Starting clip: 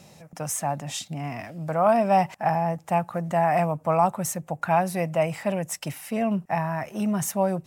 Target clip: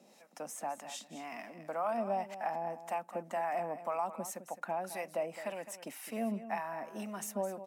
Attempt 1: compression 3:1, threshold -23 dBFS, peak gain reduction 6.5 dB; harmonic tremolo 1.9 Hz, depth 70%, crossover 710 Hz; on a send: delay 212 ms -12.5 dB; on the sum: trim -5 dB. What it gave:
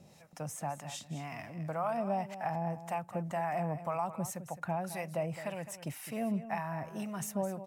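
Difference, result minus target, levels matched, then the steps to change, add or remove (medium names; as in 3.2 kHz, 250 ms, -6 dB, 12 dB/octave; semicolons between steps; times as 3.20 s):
250 Hz band +3.0 dB
add after compression: elliptic high-pass 220 Hz, stop band 70 dB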